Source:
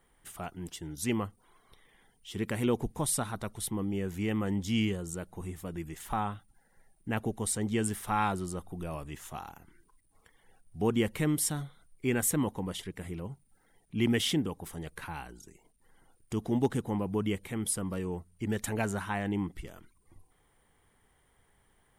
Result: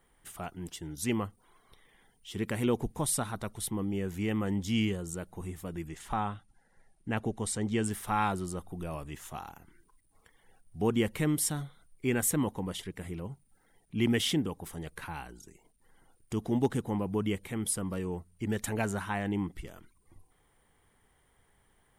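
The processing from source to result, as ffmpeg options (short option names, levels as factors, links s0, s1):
-filter_complex "[0:a]asettb=1/sr,asplit=3[s0][s1][s2];[s0]atrim=end=5.874[s3];[s1]atrim=start=5.87:end=7.91,asetpts=PTS-STARTPTS,afade=t=in:d=0.004:c=qsin,afade=t=out:st=2.036:d=0.004:c=qsin,lowpass=8700[s4];[s2]atrim=start=7.906[s5];[s3][s4]acrossfade=d=0.004:c1=hsin:c2=qsin[s6];[s6][s5]acrossfade=d=0.004:c1=qsin:c2=hsin"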